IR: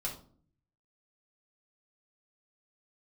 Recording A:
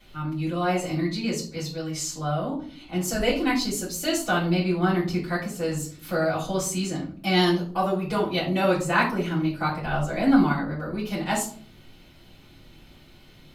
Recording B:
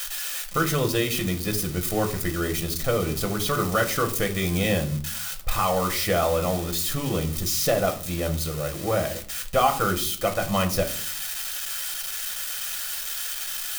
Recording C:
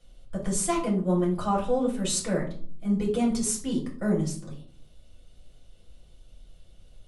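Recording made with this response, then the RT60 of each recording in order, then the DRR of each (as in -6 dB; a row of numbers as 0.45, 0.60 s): C; 0.50, 0.50, 0.50 s; -9.5, 4.5, -3.5 dB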